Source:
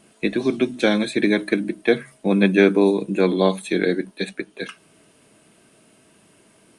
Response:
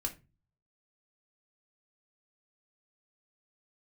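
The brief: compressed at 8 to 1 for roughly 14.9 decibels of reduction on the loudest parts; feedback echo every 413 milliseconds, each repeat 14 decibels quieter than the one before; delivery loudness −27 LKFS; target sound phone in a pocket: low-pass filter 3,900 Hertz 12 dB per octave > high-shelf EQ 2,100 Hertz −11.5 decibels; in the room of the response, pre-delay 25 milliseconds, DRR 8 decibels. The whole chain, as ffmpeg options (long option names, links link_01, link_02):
-filter_complex "[0:a]acompressor=threshold=-26dB:ratio=8,aecho=1:1:413|826:0.2|0.0399,asplit=2[link_01][link_02];[1:a]atrim=start_sample=2205,adelay=25[link_03];[link_02][link_03]afir=irnorm=-1:irlink=0,volume=-9dB[link_04];[link_01][link_04]amix=inputs=2:normalize=0,lowpass=3900,highshelf=frequency=2100:gain=-11.5,volume=4.5dB"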